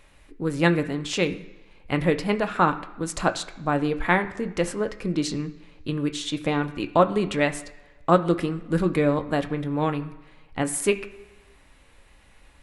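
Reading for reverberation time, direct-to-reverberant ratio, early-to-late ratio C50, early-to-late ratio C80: 1.2 s, 7.0 dB, 14.0 dB, 16.5 dB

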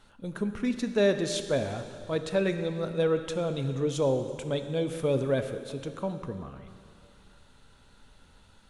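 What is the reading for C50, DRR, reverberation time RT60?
9.0 dB, 8.0 dB, 2.4 s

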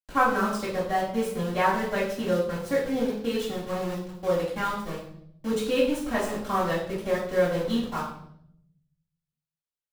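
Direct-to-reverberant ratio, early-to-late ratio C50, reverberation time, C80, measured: -10.0 dB, 4.5 dB, 0.70 s, 7.5 dB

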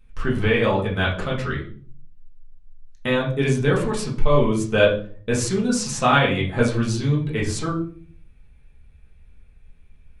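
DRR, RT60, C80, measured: -5.0 dB, 0.45 s, 13.0 dB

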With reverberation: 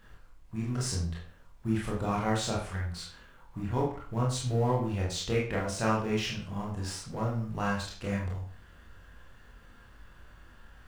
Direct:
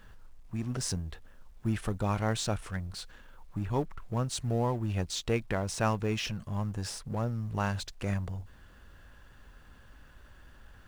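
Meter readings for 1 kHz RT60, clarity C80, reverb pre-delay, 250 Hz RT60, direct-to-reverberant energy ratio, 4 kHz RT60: 0.45 s, 8.5 dB, 24 ms, 0.45 s, -4.5 dB, 0.40 s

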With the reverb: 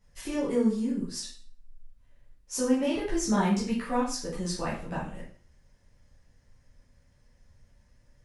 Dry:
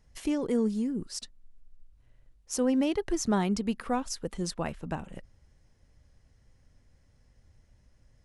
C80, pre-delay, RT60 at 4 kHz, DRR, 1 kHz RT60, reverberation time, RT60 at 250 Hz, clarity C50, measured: 9.5 dB, 5 ms, 0.40 s, -9.0 dB, 0.45 s, 0.45 s, 0.40 s, 4.5 dB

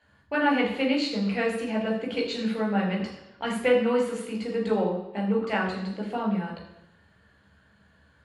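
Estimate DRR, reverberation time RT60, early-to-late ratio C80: -3.0 dB, 0.85 s, 8.0 dB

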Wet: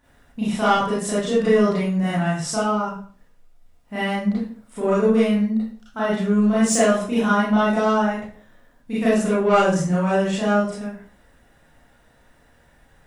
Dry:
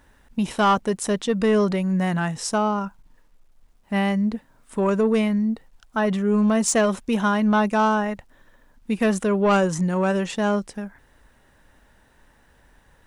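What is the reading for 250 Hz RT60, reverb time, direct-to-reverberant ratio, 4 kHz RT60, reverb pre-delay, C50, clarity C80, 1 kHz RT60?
0.50 s, 0.50 s, -10.0 dB, 0.40 s, 30 ms, 0.0 dB, 7.0 dB, 0.45 s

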